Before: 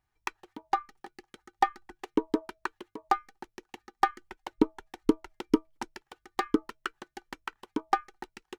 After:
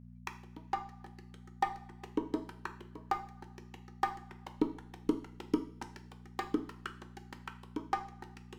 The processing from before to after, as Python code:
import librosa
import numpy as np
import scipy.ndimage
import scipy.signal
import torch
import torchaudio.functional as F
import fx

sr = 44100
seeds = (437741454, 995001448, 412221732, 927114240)

y = fx.dmg_buzz(x, sr, base_hz=60.0, harmonics=4, level_db=-46.0, tilt_db=-1, odd_only=False)
y = fx.rev_double_slope(y, sr, seeds[0], early_s=0.47, late_s=2.5, knee_db=-22, drr_db=7.0)
y = y * librosa.db_to_amplitude(-8.0)